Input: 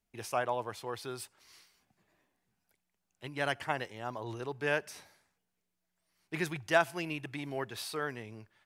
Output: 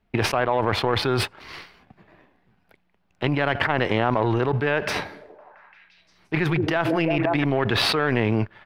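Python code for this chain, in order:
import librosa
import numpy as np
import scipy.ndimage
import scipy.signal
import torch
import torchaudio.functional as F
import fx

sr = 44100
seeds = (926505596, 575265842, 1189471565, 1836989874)

y = fx.high_shelf(x, sr, hz=8100.0, db=6.5)
y = fx.power_curve(y, sr, exponent=1.4)
y = fx.air_absorb(y, sr, metres=380.0)
y = fx.echo_stepped(y, sr, ms=171, hz=290.0, octaves=0.7, feedback_pct=70, wet_db=-10.0, at=(4.82, 7.44))
y = fx.env_flatten(y, sr, amount_pct=100)
y = y * librosa.db_to_amplitude(4.5)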